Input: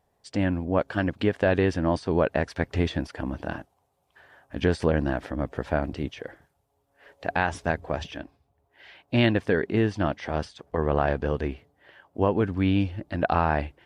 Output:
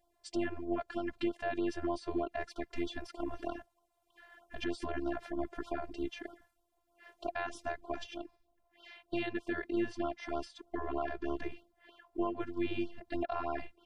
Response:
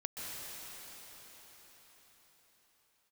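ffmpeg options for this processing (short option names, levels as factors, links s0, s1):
-af "afftfilt=real='hypot(re,im)*cos(PI*b)':imag='0':win_size=512:overlap=0.75,alimiter=limit=0.0841:level=0:latency=1:release=457,afftfilt=real='re*(1-between(b*sr/1024,240*pow(2100/240,0.5+0.5*sin(2*PI*3.2*pts/sr))/1.41,240*pow(2100/240,0.5+0.5*sin(2*PI*3.2*pts/sr))*1.41))':imag='im*(1-between(b*sr/1024,240*pow(2100/240,0.5+0.5*sin(2*PI*3.2*pts/sr))/1.41,240*pow(2100/240,0.5+0.5*sin(2*PI*3.2*pts/sr))*1.41))':win_size=1024:overlap=0.75"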